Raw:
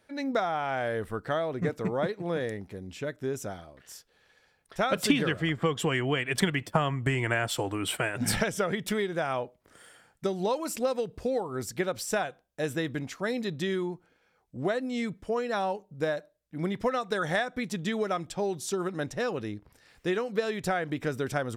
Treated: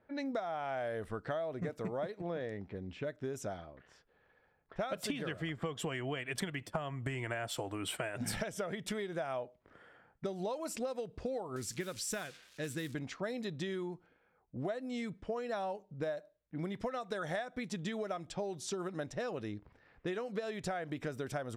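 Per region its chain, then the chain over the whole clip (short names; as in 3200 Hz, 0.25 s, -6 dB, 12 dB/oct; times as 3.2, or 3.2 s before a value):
2.21–2.75 HPF 55 Hz + air absorption 100 m
11.56–12.94 switching spikes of -32.5 dBFS + bell 710 Hz -12.5 dB 0.92 oct
whole clip: low-pass opened by the level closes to 1400 Hz, open at -27.5 dBFS; dynamic EQ 640 Hz, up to +7 dB, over -45 dBFS, Q 4.4; compressor 4:1, threshold -34 dBFS; gain -2 dB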